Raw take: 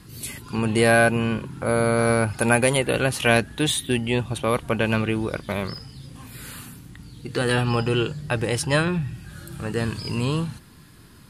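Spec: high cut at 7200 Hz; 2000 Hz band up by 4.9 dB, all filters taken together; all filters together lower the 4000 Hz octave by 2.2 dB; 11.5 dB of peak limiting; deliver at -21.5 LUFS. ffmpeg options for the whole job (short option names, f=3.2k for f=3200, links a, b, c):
-af "lowpass=7.2k,equalizer=f=2k:t=o:g=8.5,equalizer=f=4k:t=o:g=-7,volume=3dB,alimiter=limit=-9dB:level=0:latency=1"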